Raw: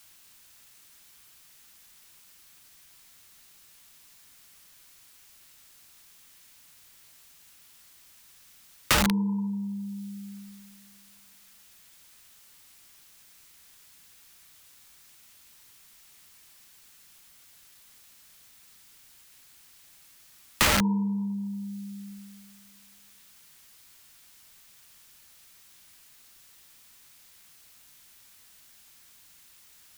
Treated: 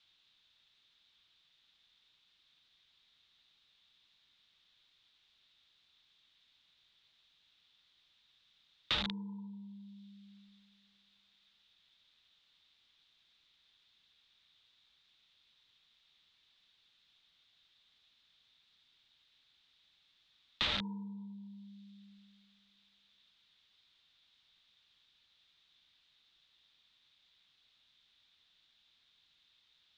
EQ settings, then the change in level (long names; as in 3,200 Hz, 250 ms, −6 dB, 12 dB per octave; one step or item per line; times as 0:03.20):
transistor ladder low-pass 3,900 Hz, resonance 75%
−4.5 dB